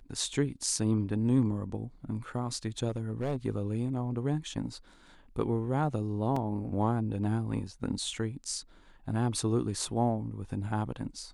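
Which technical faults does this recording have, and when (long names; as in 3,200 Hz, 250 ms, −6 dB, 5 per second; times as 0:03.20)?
0:02.88–0:03.46: clipping −26.5 dBFS
0:06.36: drop-out 4.2 ms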